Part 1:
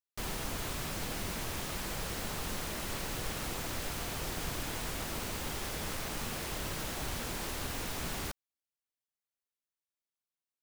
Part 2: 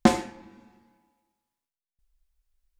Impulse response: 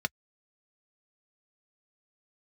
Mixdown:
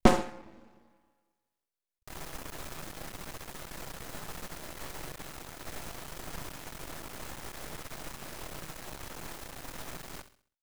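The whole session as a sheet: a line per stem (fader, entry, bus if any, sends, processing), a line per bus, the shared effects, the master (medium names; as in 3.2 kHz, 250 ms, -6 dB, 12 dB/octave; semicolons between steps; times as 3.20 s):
-1.5 dB, 1.90 s, send -15.5 dB, echo send -13 dB, none
0.0 dB, 0.00 s, no send, echo send -19.5 dB, peaking EQ 480 Hz +7 dB 1 oct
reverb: on, pre-delay 3 ms
echo: feedback delay 66 ms, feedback 39%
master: half-wave rectifier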